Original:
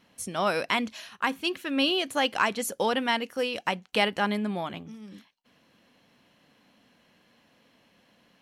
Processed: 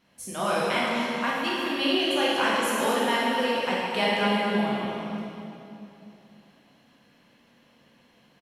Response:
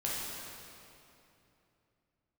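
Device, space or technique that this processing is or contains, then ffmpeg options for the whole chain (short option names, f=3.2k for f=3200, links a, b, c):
cave: -filter_complex "[0:a]aecho=1:1:237:0.355[a];[1:a]atrim=start_sample=2205[b];[a][b]afir=irnorm=-1:irlink=0,volume=-3.5dB"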